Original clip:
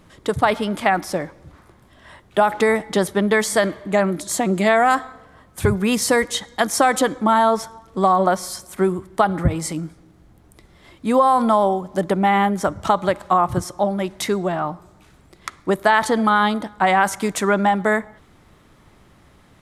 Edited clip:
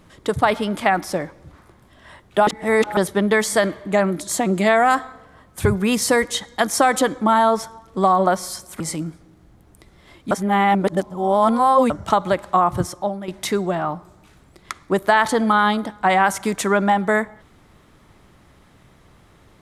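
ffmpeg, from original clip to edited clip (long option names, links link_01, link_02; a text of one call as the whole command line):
ffmpeg -i in.wav -filter_complex "[0:a]asplit=7[link_01][link_02][link_03][link_04][link_05][link_06][link_07];[link_01]atrim=end=2.472[link_08];[link_02]atrim=start=2.468:end=2.972,asetpts=PTS-STARTPTS,areverse[link_09];[link_03]atrim=start=2.968:end=8.802[link_10];[link_04]atrim=start=9.568:end=11.082[link_11];[link_05]atrim=start=11.078:end=12.672,asetpts=PTS-STARTPTS,areverse[link_12];[link_06]atrim=start=12.668:end=14.05,asetpts=PTS-STARTPTS,afade=type=out:start_time=0.982:duration=0.4:silence=0.266073[link_13];[link_07]atrim=start=14.05,asetpts=PTS-STARTPTS,afade=type=in:duration=0.004:curve=hsin:silence=0.266073[link_14];[link_08][link_09]acrossfade=duration=0.004:curve1=hsin:curve2=hsin[link_15];[link_15][link_10]acrossfade=duration=0.004:curve1=hsin:curve2=hsin[link_16];[link_16][link_11]acrossfade=duration=0.004:curve1=hsin:curve2=hsin[link_17];[link_17][link_12]acrossfade=duration=0.004:curve1=hsin:curve2=hsin[link_18];[link_13][link_14]concat=n=2:v=0:a=1[link_19];[link_18][link_19]acrossfade=duration=0.004:curve1=hsin:curve2=hsin" out.wav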